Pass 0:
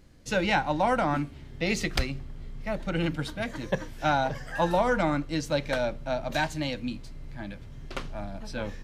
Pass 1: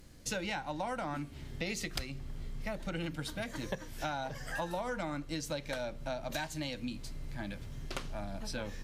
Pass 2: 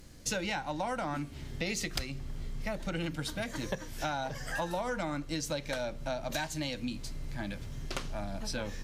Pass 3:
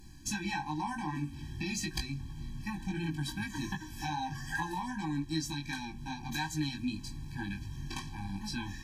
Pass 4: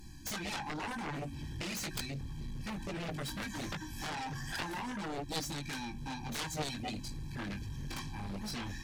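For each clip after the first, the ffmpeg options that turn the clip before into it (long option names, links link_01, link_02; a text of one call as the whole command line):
ffmpeg -i in.wav -af "aemphasis=mode=production:type=cd,acompressor=threshold=-35dB:ratio=5" out.wav
ffmpeg -i in.wav -filter_complex "[0:a]equalizer=frequency=6100:width=1.5:gain=2.5,asplit=2[link_01][link_02];[link_02]asoftclip=type=tanh:threshold=-28.5dB,volume=-8dB[link_03];[link_01][link_03]amix=inputs=2:normalize=0" out.wav
ffmpeg -i in.wav -af "flanger=delay=19:depth=2.4:speed=2.6,afftfilt=real='re*eq(mod(floor(b*sr/1024/380),2),0)':imag='im*eq(mod(floor(b*sr/1024/380),2),0)':win_size=1024:overlap=0.75,volume=4.5dB" out.wav
ffmpeg -i in.wav -af "aeval=exprs='0.106*(cos(1*acos(clip(val(0)/0.106,-1,1)))-cos(1*PI/2))+0.0531*(cos(7*acos(clip(val(0)/0.106,-1,1)))-cos(7*PI/2))':channel_layout=same,volume=-6dB" out.wav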